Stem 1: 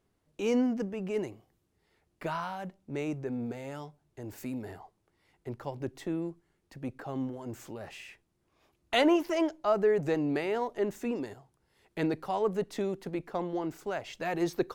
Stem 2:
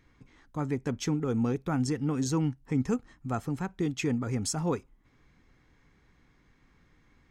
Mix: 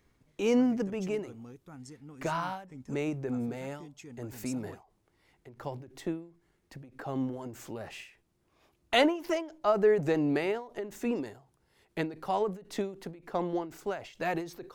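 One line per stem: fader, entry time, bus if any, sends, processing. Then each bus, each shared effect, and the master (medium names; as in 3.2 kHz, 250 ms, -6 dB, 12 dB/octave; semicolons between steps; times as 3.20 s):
+2.0 dB, 0.00 s, no send, endings held to a fixed fall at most 130 dB/s
-7.5 dB, 0.00 s, no send, treble shelf 5.7 kHz +11 dB; auto duck -12 dB, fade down 0.30 s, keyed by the first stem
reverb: none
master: none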